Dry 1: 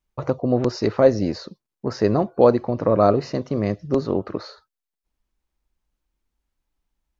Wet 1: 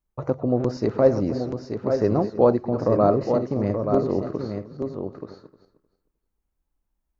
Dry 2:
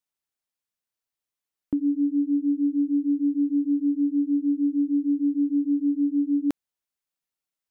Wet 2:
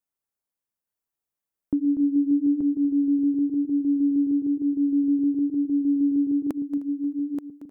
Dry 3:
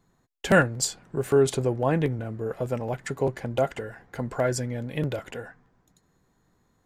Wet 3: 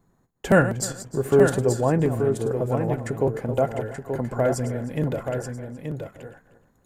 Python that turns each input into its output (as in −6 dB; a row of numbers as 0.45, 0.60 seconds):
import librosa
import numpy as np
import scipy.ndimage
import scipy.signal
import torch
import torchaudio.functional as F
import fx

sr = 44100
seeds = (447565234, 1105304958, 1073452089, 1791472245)

p1 = fx.reverse_delay_fb(x, sr, ms=154, feedback_pct=41, wet_db=-12.0)
p2 = fx.peak_eq(p1, sr, hz=3600.0, db=-9.5, octaves=2.2)
p3 = p2 + fx.echo_single(p2, sr, ms=879, db=-6.5, dry=0)
y = p3 * 10.0 ** (-24 / 20.0) / np.sqrt(np.mean(np.square(p3)))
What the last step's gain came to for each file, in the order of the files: −2.0, +1.5, +3.0 decibels